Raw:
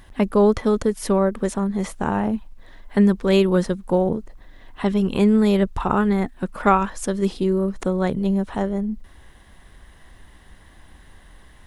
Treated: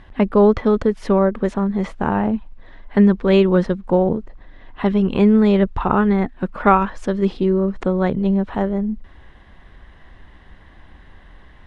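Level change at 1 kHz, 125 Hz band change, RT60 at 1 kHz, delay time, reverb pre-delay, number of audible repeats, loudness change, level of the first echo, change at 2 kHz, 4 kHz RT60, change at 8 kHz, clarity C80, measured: +3.0 dB, +3.0 dB, no reverb, no echo, no reverb, no echo, +3.0 dB, no echo, +2.5 dB, no reverb, under -10 dB, no reverb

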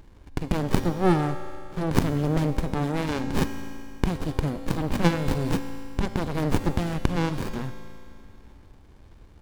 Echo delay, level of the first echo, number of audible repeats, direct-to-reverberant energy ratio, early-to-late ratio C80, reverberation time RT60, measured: no echo, no echo, no echo, 8.0 dB, 9.0 dB, 2.4 s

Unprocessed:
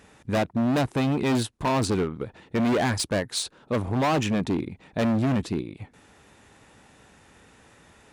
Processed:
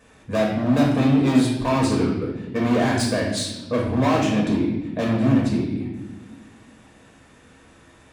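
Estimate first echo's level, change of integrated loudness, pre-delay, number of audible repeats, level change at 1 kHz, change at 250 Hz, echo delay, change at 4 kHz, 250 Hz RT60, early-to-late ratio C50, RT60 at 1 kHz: no echo, +4.5 dB, 3 ms, no echo, +2.0 dB, +6.0 dB, no echo, +2.0 dB, 2.2 s, 3.0 dB, 0.80 s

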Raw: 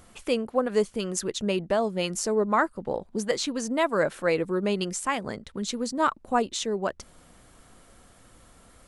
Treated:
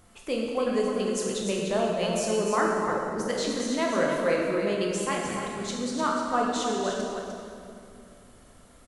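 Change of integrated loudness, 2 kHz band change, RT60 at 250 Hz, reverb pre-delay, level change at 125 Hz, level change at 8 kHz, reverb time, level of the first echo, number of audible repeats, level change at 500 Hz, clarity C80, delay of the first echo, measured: 0.0 dB, -0.5 dB, 3.1 s, 15 ms, -0.5 dB, -0.5 dB, 2.5 s, -6.5 dB, 1, +0.5 dB, 0.5 dB, 300 ms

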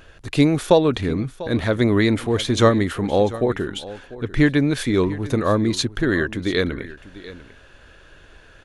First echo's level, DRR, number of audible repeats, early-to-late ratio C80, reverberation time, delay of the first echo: -17.0 dB, no reverb, 1, no reverb, no reverb, 695 ms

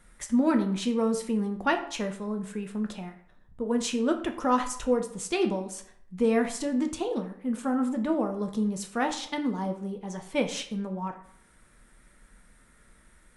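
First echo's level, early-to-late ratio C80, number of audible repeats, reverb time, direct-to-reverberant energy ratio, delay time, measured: no echo, 13.5 dB, no echo, 0.60 s, 4.5 dB, no echo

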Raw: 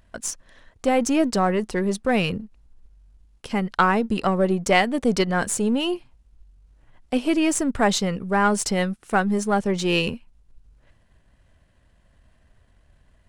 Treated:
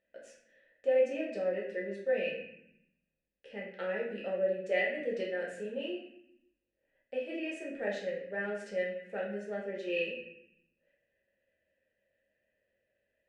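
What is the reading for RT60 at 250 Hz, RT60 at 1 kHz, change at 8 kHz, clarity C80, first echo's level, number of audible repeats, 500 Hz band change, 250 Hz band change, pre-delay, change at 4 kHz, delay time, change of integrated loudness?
1.2 s, 0.65 s, under -30 dB, 6.5 dB, no echo, no echo, -7.5 dB, -20.0 dB, 5 ms, -18.5 dB, no echo, -12.5 dB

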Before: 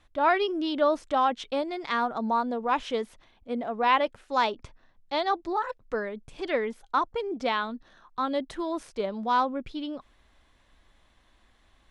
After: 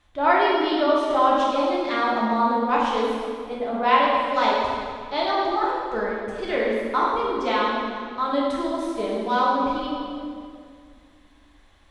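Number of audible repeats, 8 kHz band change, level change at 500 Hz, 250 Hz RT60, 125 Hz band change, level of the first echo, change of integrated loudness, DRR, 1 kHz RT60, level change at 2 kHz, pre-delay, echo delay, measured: no echo, no reading, +6.0 dB, 2.7 s, no reading, no echo, +5.5 dB, -5.5 dB, 2.0 s, +5.5 dB, 3 ms, no echo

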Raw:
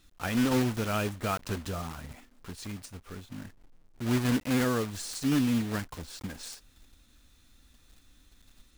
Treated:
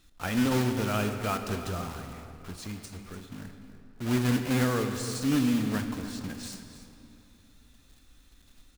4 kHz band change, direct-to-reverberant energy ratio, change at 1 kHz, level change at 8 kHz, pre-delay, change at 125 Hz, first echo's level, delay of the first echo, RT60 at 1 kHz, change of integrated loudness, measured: +1.0 dB, 6.0 dB, +1.0 dB, +0.5 dB, 19 ms, +2.0 dB, -14.5 dB, 296 ms, 2.8 s, +1.0 dB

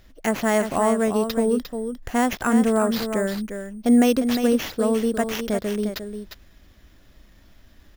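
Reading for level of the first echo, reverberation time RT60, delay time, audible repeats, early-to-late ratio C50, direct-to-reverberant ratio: -8.0 dB, no reverb, 353 ms, 1, no reverb, no reverb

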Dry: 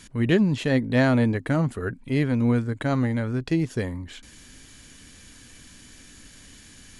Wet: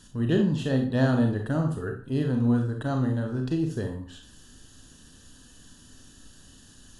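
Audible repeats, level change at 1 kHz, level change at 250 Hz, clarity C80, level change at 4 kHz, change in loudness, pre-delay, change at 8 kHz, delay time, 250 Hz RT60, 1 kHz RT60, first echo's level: no echo, -4.0 dB, -2.5 dB, 11.5 dB, -5.0 dB, -2.5 dB, 30 ms, -4.5 dB, no echo, 0.40 s, 0.40 s, no echo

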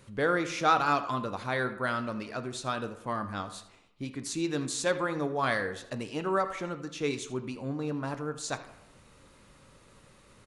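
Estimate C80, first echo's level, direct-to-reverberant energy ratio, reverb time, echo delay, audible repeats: 13.0 dB, -16.5 dB, 8.5 dB, 0.85 s, 80 ms, 1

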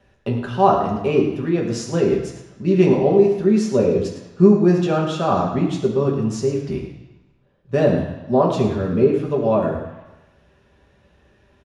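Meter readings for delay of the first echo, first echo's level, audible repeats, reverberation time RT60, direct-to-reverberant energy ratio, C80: 107 ms, -10.5 dB, 1, 1.0 s, -2.5 dB, 6.5 dB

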